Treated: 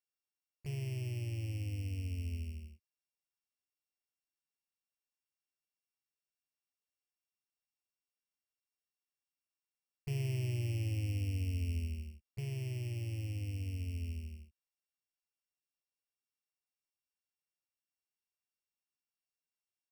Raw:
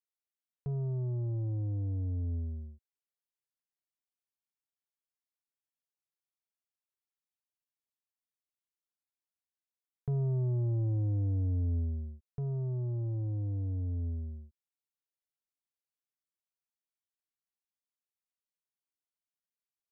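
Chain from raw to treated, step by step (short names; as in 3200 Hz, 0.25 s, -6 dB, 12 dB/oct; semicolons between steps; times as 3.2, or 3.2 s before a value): sample sorter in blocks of 16 samples; harmoniser -3 st -9 dB; gain -5.5 dB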